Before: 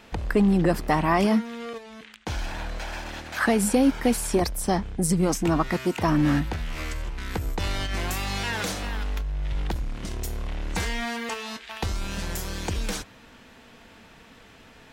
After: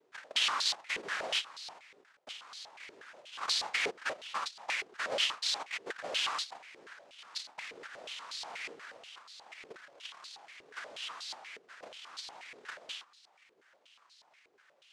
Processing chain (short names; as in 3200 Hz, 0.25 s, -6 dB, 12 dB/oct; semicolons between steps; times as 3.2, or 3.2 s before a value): 4.41–5.3 comb 0.9 ms, depth 71%; noise vocoder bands 1; stepped band-pass 8.3 Hz 420–4200 Hz; gain -2.5 dB